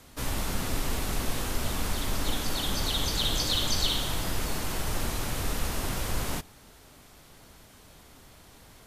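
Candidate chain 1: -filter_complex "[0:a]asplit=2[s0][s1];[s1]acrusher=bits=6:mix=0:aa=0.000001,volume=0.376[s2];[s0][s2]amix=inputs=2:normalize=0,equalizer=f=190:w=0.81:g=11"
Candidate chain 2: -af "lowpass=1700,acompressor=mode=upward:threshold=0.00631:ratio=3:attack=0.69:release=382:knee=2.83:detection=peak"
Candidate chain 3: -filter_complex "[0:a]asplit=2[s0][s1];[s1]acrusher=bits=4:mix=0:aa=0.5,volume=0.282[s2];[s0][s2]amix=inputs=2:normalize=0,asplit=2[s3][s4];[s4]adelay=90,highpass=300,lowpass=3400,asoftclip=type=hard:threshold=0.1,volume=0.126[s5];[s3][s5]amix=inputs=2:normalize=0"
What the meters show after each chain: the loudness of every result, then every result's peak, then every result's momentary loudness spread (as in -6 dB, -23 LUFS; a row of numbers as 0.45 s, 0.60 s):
-24.5 LUFS, -34.5 LUFS, -28.0 LUFS; -9.5 dBFS, -16.5 dBFS, -11.0 dBFS; 4 LU, 21 LU, 6 LU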